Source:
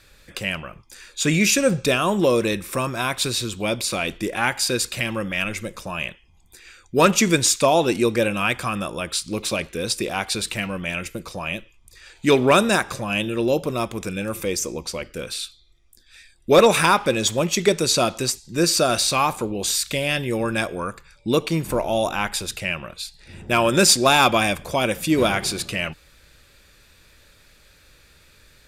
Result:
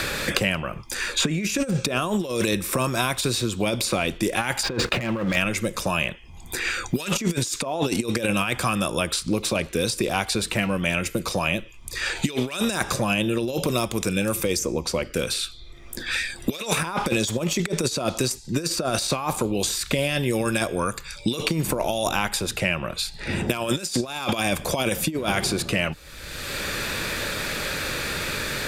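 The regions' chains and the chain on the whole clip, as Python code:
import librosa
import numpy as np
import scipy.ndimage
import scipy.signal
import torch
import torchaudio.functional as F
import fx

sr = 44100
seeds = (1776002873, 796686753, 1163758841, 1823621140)

y = fx.chain(x, sr, fx.lowpass(hz=2600.0, slope=12),
    fx.leveller(passes=3), at=(4.63, 5.36))
y = fx.over_compress(y, sr, threshold_db=-23.0, ratio=-0.5)
y = fx.dynamic_eq(y, sr, hz=2200.0, q=0.78, threshold_db=-35.0, ratio=4.0, max_db=-3)
y = fx.band_squash(y, sr, depth_pct=100)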